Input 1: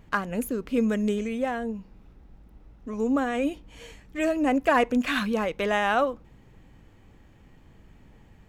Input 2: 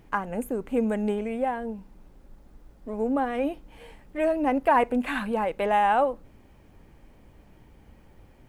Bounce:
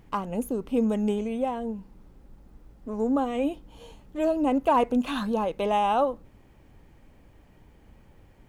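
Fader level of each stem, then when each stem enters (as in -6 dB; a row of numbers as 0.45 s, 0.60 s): -7.5 dB, -2.5 dB; 0.00 s, 0.00 s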